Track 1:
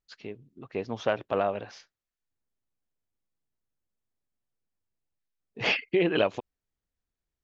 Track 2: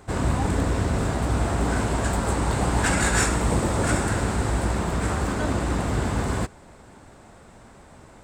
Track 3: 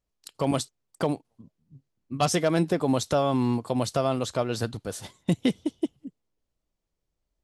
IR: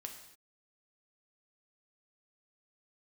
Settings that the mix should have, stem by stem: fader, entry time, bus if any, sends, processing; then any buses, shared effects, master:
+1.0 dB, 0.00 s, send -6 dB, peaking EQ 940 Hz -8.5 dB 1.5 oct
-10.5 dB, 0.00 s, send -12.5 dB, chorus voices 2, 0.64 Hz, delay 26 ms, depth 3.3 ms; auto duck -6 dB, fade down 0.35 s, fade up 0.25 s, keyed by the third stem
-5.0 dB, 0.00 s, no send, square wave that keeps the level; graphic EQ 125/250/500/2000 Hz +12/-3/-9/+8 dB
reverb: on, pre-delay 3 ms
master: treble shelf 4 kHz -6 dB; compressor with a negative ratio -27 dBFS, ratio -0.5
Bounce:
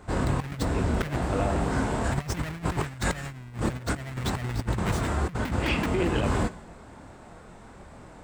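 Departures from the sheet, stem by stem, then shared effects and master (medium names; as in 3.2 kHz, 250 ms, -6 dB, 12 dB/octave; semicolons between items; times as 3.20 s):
stem 1 +1.0 dB -> -9.5 dB; stem 2 -10.5 dB -> -2.0 dB; reverb return +8.5 dB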